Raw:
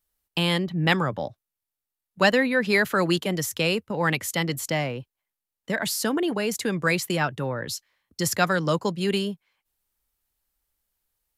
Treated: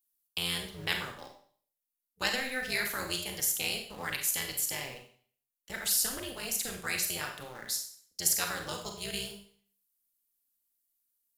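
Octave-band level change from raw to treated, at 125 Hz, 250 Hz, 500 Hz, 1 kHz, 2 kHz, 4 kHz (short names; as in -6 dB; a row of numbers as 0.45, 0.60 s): -18.5, -18.5, -17.0, -13.0, -9.5, -4.5 dB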